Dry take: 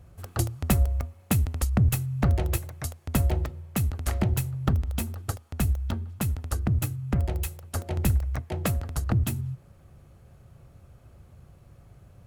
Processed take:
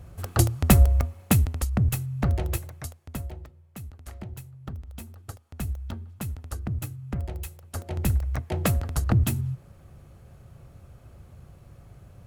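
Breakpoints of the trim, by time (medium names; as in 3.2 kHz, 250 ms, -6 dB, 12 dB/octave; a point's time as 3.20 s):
1.20 s +6 dB
1.66 s -1.5 dB
2.74 s -1.5 dB
3.36 s -14 dB
4.59 s -14 dB
5.76 s -5.5 dB
7.49 s -5.5 dB
8.56 s +3 dB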